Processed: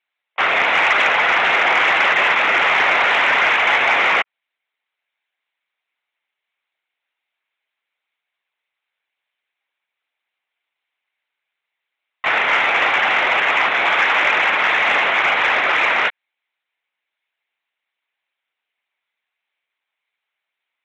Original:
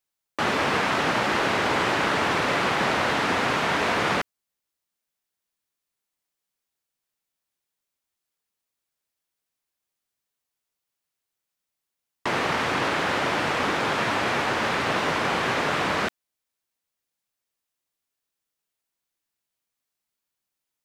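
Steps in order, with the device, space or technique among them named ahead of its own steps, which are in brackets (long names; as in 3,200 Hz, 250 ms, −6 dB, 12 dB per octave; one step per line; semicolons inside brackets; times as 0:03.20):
talking toy (linear-prediction vocoder at 8 kHz; high-pass filter 550 Hz 12 dB per octave; parametric band 2,200 Hz +9 dB 0.59 octaves; soft clipping −13 dBFS, distortion −24 dB)
level +8 dB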